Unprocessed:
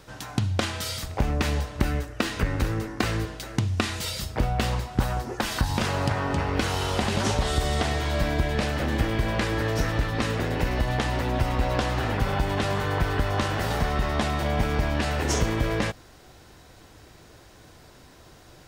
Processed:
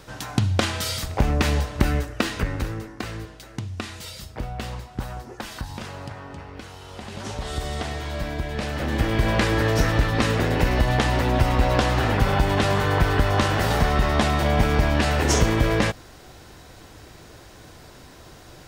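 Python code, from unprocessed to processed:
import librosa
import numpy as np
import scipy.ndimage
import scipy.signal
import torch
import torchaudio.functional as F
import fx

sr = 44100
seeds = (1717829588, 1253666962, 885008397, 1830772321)

y = fx.gain(x, sr, db=fx.line((2.08, 4.0), (3.04, -6.5), (5.35, -6.5), (6.81, -15.0), (7.57, -4.0), (8.47, -4.0), (9.28, 5.0)))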